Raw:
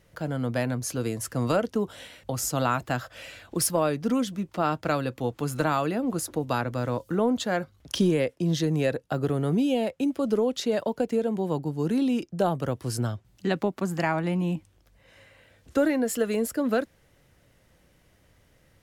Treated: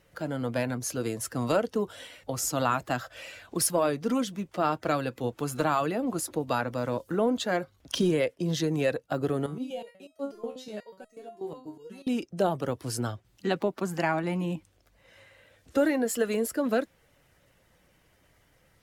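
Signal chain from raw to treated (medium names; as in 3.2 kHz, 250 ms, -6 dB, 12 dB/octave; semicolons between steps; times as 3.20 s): coarse spectral quantiser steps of 15 dB; tone controls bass -5 dB, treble 0 dB; 9.46–12.07 s: resonator arpeggio 8.2 Hz 76–640 Hz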